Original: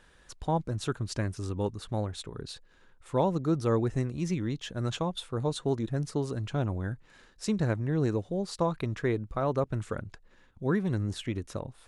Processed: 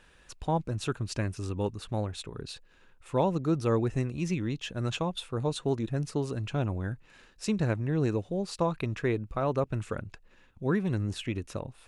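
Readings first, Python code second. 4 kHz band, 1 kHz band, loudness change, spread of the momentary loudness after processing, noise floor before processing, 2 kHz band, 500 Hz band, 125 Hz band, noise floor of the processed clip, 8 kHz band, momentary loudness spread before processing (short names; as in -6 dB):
+1.0 dB, 0.0 dB, 0.0 dB, 10 LU, -60 dBFS, +1.5 dB, 0.0 dB, 0.0 dB, -60 dBFS, 0.0 dB, 10 LU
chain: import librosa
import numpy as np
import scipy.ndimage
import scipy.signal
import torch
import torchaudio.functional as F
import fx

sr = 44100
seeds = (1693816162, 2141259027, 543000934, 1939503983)

y = fx.peak_eq(x, sr, hz=2600.0, db=8.5, octaves=0.23)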